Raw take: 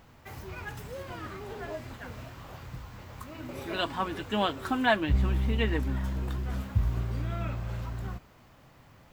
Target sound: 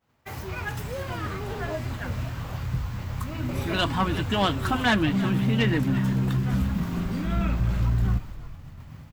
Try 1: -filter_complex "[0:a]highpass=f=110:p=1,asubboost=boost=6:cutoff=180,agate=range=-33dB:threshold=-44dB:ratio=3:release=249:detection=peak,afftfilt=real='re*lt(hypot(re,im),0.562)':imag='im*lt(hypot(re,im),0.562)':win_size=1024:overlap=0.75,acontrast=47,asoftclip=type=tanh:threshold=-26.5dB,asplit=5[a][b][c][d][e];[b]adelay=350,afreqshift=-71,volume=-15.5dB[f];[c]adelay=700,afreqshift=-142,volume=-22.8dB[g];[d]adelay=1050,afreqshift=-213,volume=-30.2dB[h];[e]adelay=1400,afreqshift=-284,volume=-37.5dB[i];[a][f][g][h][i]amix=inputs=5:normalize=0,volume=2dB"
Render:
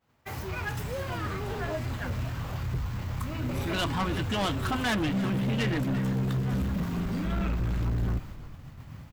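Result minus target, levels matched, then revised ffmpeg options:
soft clip: distortion +10 dB
-filter_complex "[0:a]highpass=f=110:p=1,asubboost=boost=6:cutoff=180,agate=range=-33dB:threshold=-44dB:ratio=3:release=249:detection=peak,afftfilt=real='re*lt(hypot(re,im),0.562)':imag='im*lt(hypot(re,im),0.562)':win_size=1024:overlap=0.75,acontrast=47,asoftclip=type=tanh:threshold=-16.5dB,asplit=5[a][b][c][d][e];[b]adelay=350,afreqshift=-71,volume=-15.5dB[f];[c]adelay=700,afreqshift=-142,volume=-22.8dB[g];[d]adelay=1050,afreqshift=-213,volume=-30.2dB[h];[e]adelay=1400,afreqshift=-284,volume=-37.5dB[i];[a][f][g][h][i]amix=inputs=5:normalize=0,volume=2dB"

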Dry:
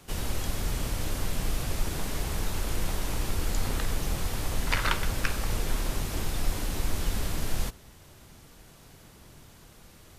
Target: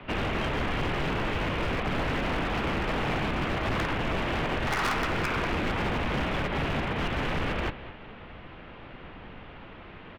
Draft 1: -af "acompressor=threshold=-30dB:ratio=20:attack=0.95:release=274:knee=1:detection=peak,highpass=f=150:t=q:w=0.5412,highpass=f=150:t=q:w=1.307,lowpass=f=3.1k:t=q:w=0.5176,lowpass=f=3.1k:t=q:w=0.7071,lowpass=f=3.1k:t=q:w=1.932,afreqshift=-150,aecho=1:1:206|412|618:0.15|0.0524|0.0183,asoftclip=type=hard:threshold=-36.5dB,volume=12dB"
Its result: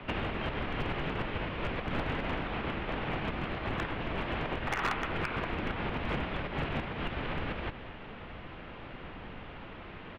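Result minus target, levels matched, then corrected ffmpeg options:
compressor: peak gain reduction +8.5 dB
-af "acompressor=threshold=-21dB:ratio=20:attack=0.95:release=274:knee=1:detection=peak,highpass=f=150:t=q:w=0.5412,highpass=f=150:t=q:w=1.307,lowpass=f=3.1k:t=q:w=0.5176,lowpass=f=3.1k:t=q:w=0.7071,lowpass=f=3.1k:t=q:w=1.932,afreqshift=-150,aecho=1:1:206|412|618:0.15|0.0524|0.0183,asoftclip=type=hard:threshold=-36.5dB,volume=12dB"

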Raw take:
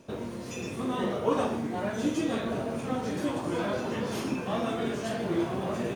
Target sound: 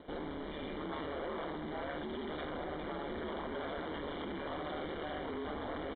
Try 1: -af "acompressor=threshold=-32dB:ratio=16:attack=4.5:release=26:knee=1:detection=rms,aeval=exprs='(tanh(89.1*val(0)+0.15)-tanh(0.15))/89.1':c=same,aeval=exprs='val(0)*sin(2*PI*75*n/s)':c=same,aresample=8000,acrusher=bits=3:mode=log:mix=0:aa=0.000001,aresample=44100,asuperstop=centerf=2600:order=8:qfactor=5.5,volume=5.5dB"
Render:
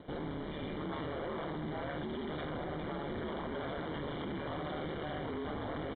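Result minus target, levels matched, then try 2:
125 Hz band +6.0 dB
-af "acompressor=threshold=-32dB:ratio=16:attack=4.5:release=26:knee=1:detection=rms,aeval=exprs='(tanh(89.1*val(0)+0.15)-tanh(0.15))/89.1':c=same,aeval=exprs='val(0)*sin(2*PI*75*n/s)':c=same,aresample=8000,acrusher=bits=3:mode=log:mix=0:aa=0.000001,aresample=44100,asuperstop=centerf=2600:order=8:qfactor=5.5,equalizer=f=130:t=o:w=0.81:g=-12.5,volume=5.5dB"

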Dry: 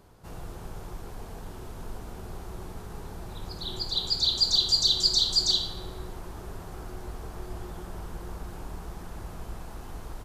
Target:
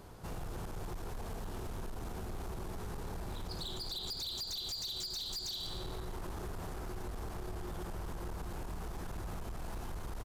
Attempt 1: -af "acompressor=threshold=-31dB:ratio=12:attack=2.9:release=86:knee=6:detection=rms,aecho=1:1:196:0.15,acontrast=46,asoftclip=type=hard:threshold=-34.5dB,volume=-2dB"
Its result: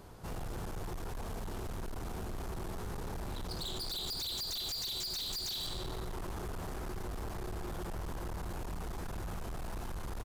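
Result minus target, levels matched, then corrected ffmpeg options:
compressor: peak gain reduction -6.5 dB
-af "acompressor=threshold=-38dB:ratio=12:attack=2.9:release=86:knee=6:detection=rms,aecho=1:1:196:0.15,acontrast=46,asoftclip=type=hard:threshold=-34.5dB,volume=-2dB"

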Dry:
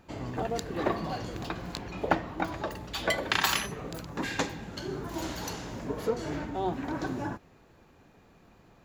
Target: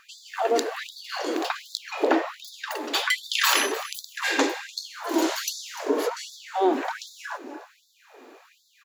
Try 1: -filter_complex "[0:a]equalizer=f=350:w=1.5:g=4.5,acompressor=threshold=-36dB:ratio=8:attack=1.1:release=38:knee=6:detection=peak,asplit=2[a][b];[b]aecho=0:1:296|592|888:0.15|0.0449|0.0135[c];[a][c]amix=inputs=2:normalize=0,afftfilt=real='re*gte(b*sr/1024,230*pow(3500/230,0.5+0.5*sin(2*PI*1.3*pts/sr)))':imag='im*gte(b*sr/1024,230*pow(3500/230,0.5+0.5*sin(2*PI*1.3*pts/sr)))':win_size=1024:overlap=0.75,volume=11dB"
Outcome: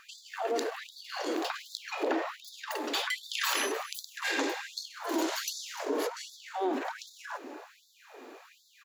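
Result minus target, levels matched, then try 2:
compressor: peak gain reduction +10 dB
-filter_complex "[0:a]equalizer=f=350:w=1.5:g=4.5,acompressor=threshold=-24.5dB:ratio=8:attack=1.1:release=38:knee=6:detection=peak,asplit=2[a][b];[b]aecho=0:1:296|592|888:0.15|0.0449|0.0135[c];[a][c]amix=inputs=2:normalize=0,afftfilt=real='re*gte(b*sr/1024,230*pow(3500/230,0.5+0.5*sin(2*PI*1.3*pts/sr)))':imag='im*gte(b*sr/1024,230*pow(3500/230,0.5+0.5*sin(2*PI*1.3*pts/sr)))':win_size=1024:overlap=0.75,volume=11dB"

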